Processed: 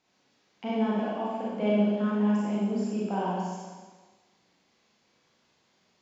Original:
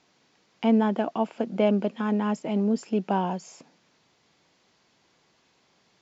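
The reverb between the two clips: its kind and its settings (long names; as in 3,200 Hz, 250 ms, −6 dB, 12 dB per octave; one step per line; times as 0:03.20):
four-comb reverb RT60 1.4 s, combs from 30 ms, DRR −6.5 dB
level −10.5 dB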